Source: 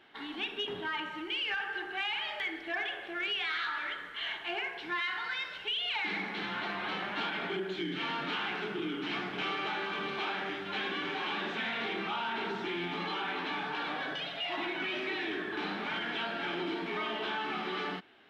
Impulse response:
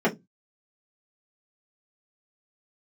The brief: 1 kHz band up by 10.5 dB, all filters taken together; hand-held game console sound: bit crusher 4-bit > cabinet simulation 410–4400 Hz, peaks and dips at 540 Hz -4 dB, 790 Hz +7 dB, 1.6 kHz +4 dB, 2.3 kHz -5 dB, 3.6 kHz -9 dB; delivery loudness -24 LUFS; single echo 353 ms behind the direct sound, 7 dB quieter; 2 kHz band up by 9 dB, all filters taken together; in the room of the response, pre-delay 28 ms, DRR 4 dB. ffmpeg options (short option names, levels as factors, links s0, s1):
-filter_complex "[0:a]equalizer=f=1000:t=o:g=7.5,equalizer=f=2000:t=o:g=8,aecho=1:1:353:0.447,asplit=2[s0][s1];[1:a]atrim=start_sample=2205,adelay=28[s2];[s1][s2]afir=irnorm=-1:irlink=0,volume=0.106[s3];[s0][s3]amix=inputs=2:normalize=0,acrusher=bits=3:mix=0:aa=0.000001,highpass=410,equalizer=f=540:t=q:w=4:g=-4,equalizer=f=790:t=q:w=4:g=7,equalizer=f=1600:t=q:w=4:g=4,equalizer=f=2300:t=q:w=4:g=-5,equalizer=f=3600:t=q:w=4:g=-9,lowpass=f=4400:w=0.5412,lowpass=f=4400:w=1.3066,volume=1.33"